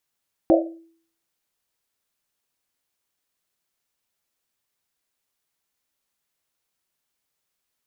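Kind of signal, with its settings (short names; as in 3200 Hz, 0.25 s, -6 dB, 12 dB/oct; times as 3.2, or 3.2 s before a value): Risset drum, pitch 330 Hz, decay 0.55 s, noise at 600 Hz, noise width 150 Hz, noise 55%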